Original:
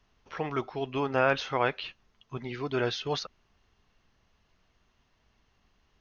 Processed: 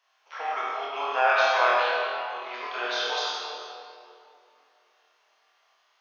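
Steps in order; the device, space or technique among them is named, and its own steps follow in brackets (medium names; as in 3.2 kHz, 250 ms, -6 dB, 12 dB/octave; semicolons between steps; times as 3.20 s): high-pass 640 Hz 24 dB/octave; tunnel (flutter echo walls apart 4.2 m, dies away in 0.38 s; reverberation RT60 2.6 s, pre-delay 37 ms, DRR -4 dB); 1.69–2.48 s: bass shelf 240 Hz +9 dB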